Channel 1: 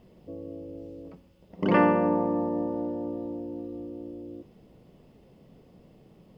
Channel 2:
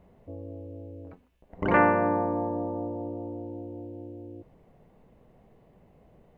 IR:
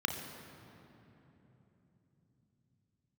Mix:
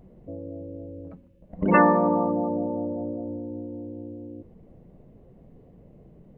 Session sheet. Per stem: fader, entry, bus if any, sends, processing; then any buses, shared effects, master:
+2.5 dB, 0.00 s, no send, spectral gate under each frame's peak -15 dB strong; tilt shelf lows -7.5 dB, about 670 Hz
-4.5 dB, 0.00 s, no send, compression, threshold -34 dBFS, peak gain reduction 17.5 dB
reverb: none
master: bass shelf 220 Hz +10.5 dB

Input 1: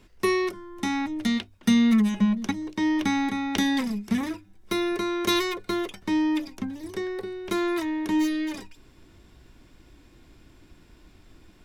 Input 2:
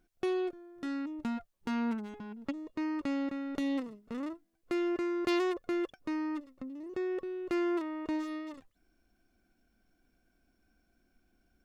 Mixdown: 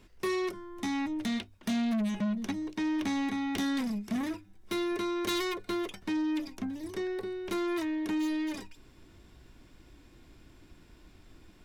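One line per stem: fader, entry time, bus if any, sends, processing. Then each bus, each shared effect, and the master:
-2.5 dB, 0.00 s, no send, none
-9.5 dB, 0.00 s, no send, none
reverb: none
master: saturation -27 dBFS, distortion -10 dB

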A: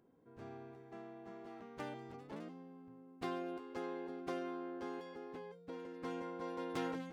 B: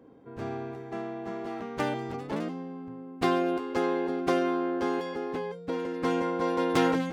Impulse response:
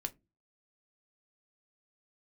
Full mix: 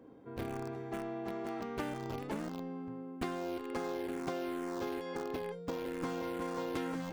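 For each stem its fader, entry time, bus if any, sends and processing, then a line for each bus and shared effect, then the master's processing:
-1.5 dB, 0.00 s, send -8 dB, tilt EQ -4.5 dB/octave; word length cut 6-bit, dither none; barber-pole phaser -2.2 Hz
-4.0 dB, 0.00 s, send -9 dB, none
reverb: on, pre-delay 3 ms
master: compression 6:1, threshold -35 dBFS, peak gain reduction 14.5 dB

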